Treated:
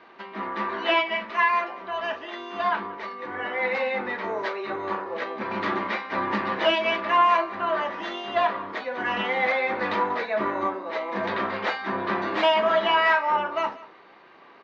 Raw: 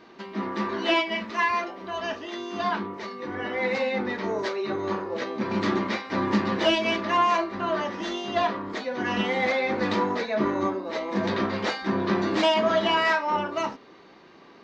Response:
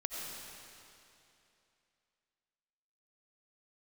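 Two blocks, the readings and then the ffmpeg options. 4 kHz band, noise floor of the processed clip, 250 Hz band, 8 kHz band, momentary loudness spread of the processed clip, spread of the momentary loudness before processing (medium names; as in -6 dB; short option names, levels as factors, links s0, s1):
-1.0 dB, -51 dBFS, -6.5 dB, no reading, 11 LU, 10 LU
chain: -filter_complex "[0:a]acrossover=split=530 3300:gain=0.251 1 0.126[s0][s1][s2];[s0][s1][s2]amix=inputs=3:normalize=0,asplit=2[s3][s4];[s4]aecho=0:1:188:0.106[s5];[s3][s5]amix=inputs=2:normalize=0,volume=1.5"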